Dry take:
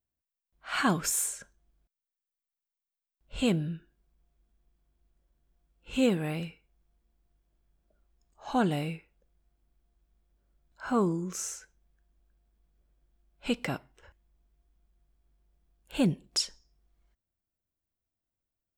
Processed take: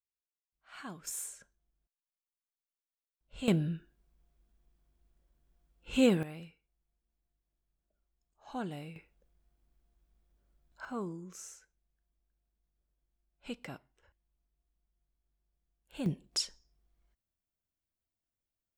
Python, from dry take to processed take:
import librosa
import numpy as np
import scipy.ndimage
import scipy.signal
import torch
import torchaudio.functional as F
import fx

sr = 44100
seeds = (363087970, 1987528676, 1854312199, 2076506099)

y = fx.gain(x, sr, db=fx.steps((0.0, -19.0), (1.07, -10.5), (3.48, 0.0), (6.23, -12.0), (8.96, -1.0), (10.85, -12.0), (16.06, -4.0)))